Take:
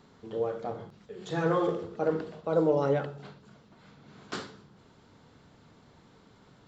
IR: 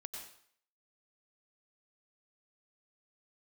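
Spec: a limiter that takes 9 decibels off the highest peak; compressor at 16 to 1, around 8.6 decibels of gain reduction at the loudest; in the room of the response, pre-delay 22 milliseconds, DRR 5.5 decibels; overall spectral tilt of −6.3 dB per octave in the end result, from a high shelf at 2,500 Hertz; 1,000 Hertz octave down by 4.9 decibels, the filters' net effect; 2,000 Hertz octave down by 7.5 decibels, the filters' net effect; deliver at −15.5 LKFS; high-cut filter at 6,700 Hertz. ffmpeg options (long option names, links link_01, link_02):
-filter_complex "[0:a]lowpass=6700,equalizer=frequency=1000:width_type=o:gain=-4,equalizer=frequency=2000:width_type=o:gain=-5.5,highshelf=frequency=2500:gain=-8,acompressor=threshold=-30dB:ratio=16,alimiter=level_in=7.5dB:limit=-24dB:level=0:latency=1,volume=-7.5dB,asplit=2[link_01][link_02];[1:a]atrim=start_sample=2205,adelay=22[link_03];[link_02][link_03]afir=irnorm=-1:irlink=0,volume=-2.5dB[link_04];[link_01][link_04]amix=inputs=2:normalize=0,volume=25.5dB"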